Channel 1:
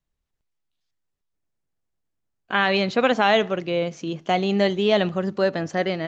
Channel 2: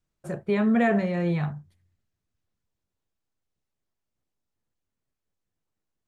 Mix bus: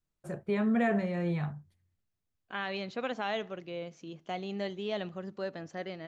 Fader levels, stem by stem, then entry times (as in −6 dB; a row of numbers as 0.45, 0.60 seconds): −15.5, −6.0 decibels; 0.00, 0.00 seconds